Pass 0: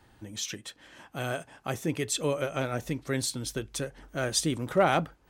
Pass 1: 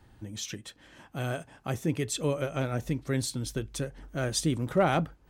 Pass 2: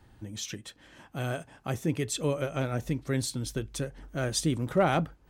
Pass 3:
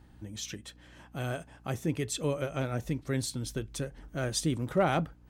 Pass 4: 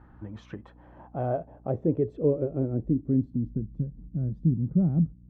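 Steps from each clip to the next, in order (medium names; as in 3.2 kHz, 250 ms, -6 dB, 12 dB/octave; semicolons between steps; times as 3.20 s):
bass shelf 260 Hz +8.5 dB; trim -3 dB
no audible change
hum 60 Hz, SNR 24 dB; trim -2 dB
low-pass sweep 1.3 kHz -> 190 Hz, 0.11–3.84 s; trim +3 dB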